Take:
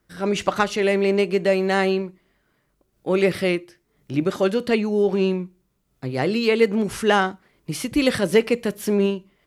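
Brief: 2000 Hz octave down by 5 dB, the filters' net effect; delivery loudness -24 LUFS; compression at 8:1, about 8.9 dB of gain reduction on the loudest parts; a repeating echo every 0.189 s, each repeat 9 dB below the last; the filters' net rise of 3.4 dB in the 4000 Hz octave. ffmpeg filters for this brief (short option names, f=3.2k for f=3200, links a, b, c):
-af "equalizer=f=2k:t=o:g=-9,equalizer=f=4k:t=o:g=8,acompressor=threshold=-22dB:ratio=8,aecho=1:1:189|378|567|756:0.355|0.124|0.0435|0.0152,volume=3dB"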